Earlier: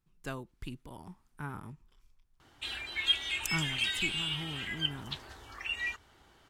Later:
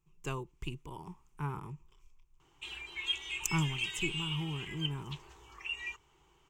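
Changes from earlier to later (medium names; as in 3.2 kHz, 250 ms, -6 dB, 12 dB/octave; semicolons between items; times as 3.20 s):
background -7.5 dB; master: add rippled EQ curve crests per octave 0.72, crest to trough 11 dB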